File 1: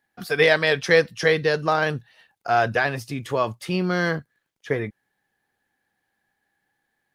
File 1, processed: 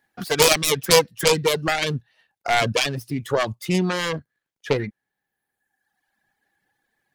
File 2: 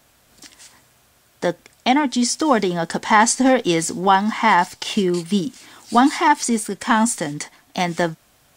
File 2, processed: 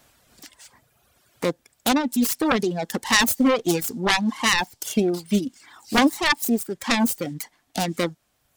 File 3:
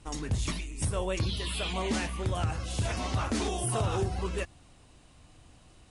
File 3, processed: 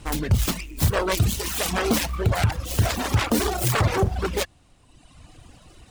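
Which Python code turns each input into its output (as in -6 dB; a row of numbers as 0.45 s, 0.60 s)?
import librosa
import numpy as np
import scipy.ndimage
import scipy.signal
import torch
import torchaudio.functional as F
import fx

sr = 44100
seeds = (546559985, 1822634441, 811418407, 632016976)

y = fx.self_delay(x, sr, depth_ms=0.59)
y = fx.dereverb_blind(y, sr, rt60_s=1.3)
y = fx.dynamic_eq(y, sr, hz=1700.0, q=0.8, threshold_db=-33.0, ratio=4.0, max_db=-6)
y = y * 10.0 ** (-24 / 20.0) / np.sqrt(np.mean(np.square(y)))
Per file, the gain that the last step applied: +4.5 dB, -0.5 dB, +11.0 dB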